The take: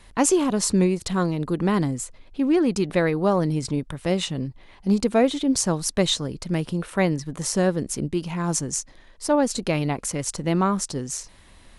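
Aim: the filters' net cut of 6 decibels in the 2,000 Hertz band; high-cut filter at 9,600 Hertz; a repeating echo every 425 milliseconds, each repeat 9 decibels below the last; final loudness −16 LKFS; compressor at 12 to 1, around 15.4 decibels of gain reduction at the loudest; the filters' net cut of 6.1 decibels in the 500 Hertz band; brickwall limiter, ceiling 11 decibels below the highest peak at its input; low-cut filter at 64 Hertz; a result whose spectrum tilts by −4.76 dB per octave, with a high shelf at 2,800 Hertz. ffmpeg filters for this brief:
ffmpeg -i in.wav -af "highpass=64,lowpass=9600,equalizer=frequency=500:width_type=o:gain=-8,equalizer=frequency=2000:width_type=o:gain=-8.5,highshelf=frequency=2800:gain=3.5,acompressor=threshold=-33dB:ratio=12,alimiter=level_in=5.5dB:limit=-24dB:level=0:latency=1,volume=-5.5dB,aecho=1:1:425|850|1275|1700:0.355|0.124|0.0435|0.0152,volume=22.5dB" out.wav

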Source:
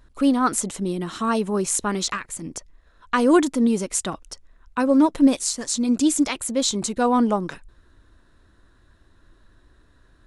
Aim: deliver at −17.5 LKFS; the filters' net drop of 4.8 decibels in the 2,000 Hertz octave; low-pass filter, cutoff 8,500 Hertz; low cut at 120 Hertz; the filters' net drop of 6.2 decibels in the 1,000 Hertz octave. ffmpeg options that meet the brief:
ffmpeg -i in.wav -af "highpass=120,lowpass=8500,equalizer=frequency=1000:width_type=o:gain=-7,equalizer=frequency=2000:width_type=o:gain=-3.5,volume=5dB" out.wav

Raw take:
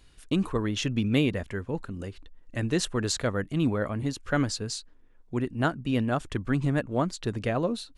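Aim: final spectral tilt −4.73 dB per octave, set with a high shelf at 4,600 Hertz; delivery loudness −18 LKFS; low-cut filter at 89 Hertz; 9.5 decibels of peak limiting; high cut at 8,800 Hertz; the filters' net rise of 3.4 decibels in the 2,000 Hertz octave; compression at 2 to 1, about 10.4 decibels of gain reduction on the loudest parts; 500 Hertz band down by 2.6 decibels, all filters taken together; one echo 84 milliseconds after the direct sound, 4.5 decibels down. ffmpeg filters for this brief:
ffmpeg -i in.wav -af "highpass=89,lowpass=8800,equalizer=frequency=500:width_type=o:gain=-3.5,equalizer=frequency=2000:width_type=o:gain=4,highshelf=frequency=4600:gain=5,acompressor=threshold=-40dB:ratio=2,alimiter=level_in=7dB:limit=-24dB:level=0:latency=1,volume=-7dB,aecho=1:1:84:0.596,volume=22dB" out.wav

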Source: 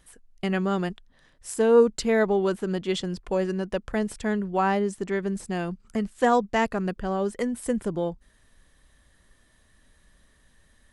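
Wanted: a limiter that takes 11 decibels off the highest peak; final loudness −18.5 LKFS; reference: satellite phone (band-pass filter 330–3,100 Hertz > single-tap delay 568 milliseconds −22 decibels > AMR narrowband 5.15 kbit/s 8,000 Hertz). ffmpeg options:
ffmpeg -i in.wav -af "alimiter=limit=-18.5dB:level=0:latency=1,highpass=330,lowpass=3100,aecho=1:1:568:0.0794,volume=14dB" -ar 8000 -c:a libopencore_amrnb -b:a 5150 out.amr

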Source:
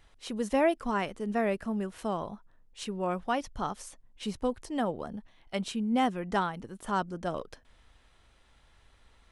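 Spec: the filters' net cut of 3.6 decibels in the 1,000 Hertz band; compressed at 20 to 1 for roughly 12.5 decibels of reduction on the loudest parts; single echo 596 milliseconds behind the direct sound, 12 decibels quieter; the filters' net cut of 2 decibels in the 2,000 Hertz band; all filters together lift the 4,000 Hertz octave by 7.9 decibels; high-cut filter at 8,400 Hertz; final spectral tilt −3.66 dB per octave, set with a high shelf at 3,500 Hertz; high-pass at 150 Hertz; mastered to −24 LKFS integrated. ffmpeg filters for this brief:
ffmpeg -i in.wav -af "highpass=150,lowpass=8400,equalizer=frequency=1000:width_type=o:gain=-5,equalizer=frequency=2000:width_type=o:gain=-5,highshelf=frequency=3500:gain=8.5,equalizer=frequency=4000:width_type=o:gain=7.5,acompressor=threshold=-35dB:ratio=20,aecho=1:1:596:0.251,volume=16.5dB" out.wav

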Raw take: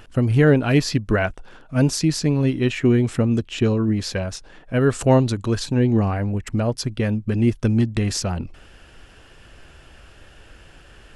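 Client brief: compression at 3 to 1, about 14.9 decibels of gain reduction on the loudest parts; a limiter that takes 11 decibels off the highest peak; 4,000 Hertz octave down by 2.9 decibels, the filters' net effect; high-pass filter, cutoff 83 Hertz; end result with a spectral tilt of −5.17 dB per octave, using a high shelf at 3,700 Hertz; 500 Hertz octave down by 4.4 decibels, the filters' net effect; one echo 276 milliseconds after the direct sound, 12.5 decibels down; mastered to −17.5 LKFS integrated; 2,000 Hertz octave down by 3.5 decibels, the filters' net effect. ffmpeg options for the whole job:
ffmpeg -i in.wav -af "highpass=83,equalizer=frequency=500:width_type=o:gain=-5.5,equalizer=frequency=2000:width_type=o:gain=-4,highshelf=frequency=3700:gain=5,equalizer=frequency=4000:width_type=o:gain=-7,acompressor=threshold=-35dB:ratio=3,alimiter=level_in=7dB:limit=-24dB:level=0:latency=1,volume=-7dB,aecho=1:1:276:0.237,volume=22dB" out.wav

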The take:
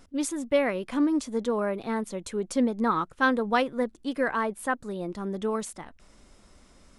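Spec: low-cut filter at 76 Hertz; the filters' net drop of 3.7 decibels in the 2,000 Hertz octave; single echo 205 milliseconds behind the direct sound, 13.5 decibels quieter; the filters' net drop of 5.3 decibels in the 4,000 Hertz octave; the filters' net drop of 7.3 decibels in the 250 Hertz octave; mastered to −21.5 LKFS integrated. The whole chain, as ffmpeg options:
ffmpeg -i in.wav -af "highpass=76,equalizer=frequency=250:width_type=o:gain=-8.5,equalizer=frequency=2000:width_type=o:gain=-4,equalizer=frequency=4000:width_type=o:gain=-5.5,aecho=1:1:205:0.211,volume=10dB" out.wav

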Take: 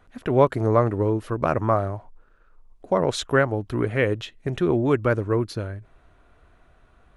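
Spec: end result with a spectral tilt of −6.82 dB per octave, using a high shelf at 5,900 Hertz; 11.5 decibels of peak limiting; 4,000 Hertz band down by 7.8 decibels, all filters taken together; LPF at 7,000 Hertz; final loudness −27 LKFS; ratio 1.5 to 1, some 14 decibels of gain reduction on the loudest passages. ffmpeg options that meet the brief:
ffmpeg -i in.wav -af "lowpass=7000,equalizer=frequency=4000:width_type=o:gain=-8,highshelf=frequency=5900:gain=-3.5,acompressor=threshold=-52dB:ratio=1.5,volume=14.5dB,alimiter=limit=-16dB:level=0:latency=1" out.wav

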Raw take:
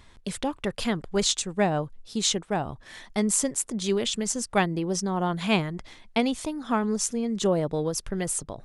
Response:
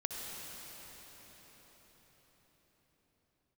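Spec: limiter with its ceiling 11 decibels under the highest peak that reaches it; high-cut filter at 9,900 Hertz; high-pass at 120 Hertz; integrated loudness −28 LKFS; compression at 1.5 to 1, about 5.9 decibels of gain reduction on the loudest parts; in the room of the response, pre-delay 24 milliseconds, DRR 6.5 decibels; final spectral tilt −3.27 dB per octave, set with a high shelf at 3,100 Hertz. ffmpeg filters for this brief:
-filter_complex "[0:a]highpass=120,lowpass=9900,highshelf=frequency=3100:gain=8,acompressor=threshold=-32dB:ratio=1.5,alimiter=limit=-18.5dB:level=0:latency=1,asplit=2[link_01][link_02];[1:a]atrim=start_sample=2205,adelay=24[link_03];[link_02][link_03]afir=irnorm=-1:irlink=0,volume=-9dB[link_04];[link_01][link_04]amix=inputs=2:normalize=0,volume=2dB"

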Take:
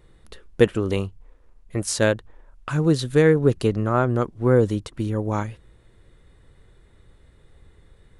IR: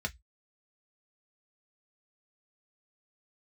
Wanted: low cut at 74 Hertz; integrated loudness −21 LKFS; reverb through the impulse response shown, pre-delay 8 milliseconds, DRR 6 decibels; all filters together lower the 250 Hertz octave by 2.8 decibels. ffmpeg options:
-filter_complex "[0:a]highpass=74,equalizer=frequency=250:width_type=o:gain=-4,asplit=2[link_01][link_02];[1:a]atrim=start_sample=2205,adelay=8[link_03];[link_02][link_03]afir=irnorm=-1:irlink=0,volume=-9.5dB[link_04];[link_01][link_04]amix=inputs=2:normalize=0,volume=2dB"

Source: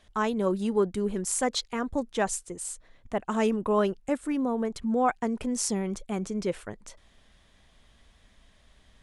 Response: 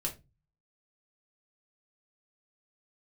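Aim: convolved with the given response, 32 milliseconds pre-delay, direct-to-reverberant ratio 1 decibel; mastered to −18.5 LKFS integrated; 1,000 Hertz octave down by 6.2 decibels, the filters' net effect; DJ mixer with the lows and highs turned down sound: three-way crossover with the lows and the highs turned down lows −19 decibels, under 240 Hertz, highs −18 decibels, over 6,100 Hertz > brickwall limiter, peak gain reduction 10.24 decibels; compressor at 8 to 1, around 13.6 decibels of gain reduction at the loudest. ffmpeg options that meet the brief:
-filter_complex "[0:a]equalizer=frequency=1000:width_type=o:gain=-8.5,acompressor=threshold=-35dB:ratio=8,asplit=2[link_01][link_02];[1:a]atrim=start_sample=2205,adelay=32[link_03];[link_02][link_03]afir=irnorm=-1:irlink=0,volume=-3dB[link_04];[link_01][link_04]amix=inputs=2:normalize=0,acrossover=split=240 6100:gain=0.112 1 0.126[link_05][link_06][link_07];[link_05][link_06][link_07]amix=inputs=3:normalize=0,volume=23.5dB,alimiter=limit=-9dB:level=0:latency=1"

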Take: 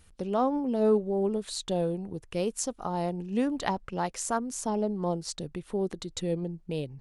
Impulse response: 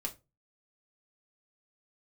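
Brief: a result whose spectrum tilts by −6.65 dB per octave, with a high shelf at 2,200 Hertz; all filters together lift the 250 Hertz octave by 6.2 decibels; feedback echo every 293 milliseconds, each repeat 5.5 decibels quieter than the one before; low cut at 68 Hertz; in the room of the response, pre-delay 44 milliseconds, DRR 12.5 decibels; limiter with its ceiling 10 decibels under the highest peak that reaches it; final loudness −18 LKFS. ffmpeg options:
-filter_complex "[0:a]highpass=68,equalizer=frequency=250:width_type=o:gain=8,highshelf=frequency=2200:gain=-5,alimiter=limit=-20.5dB:level=0:latency=1,aecho=1:1:293|586|879|1172|1465|1758|2051:0.531|0.281|0.149|0.079|0.0419|0.0222|0.0118,asplit=2[link_01][link_02];[1:a]atrim=start_sample=2205,adelay=44[link_03];[link_02][link_03]afir=irnorm=-1:irlink=0,volume=-13dB[link_04];[link_01][link_04]amix=inputs=2:normalize=0,volume=10.5dB"

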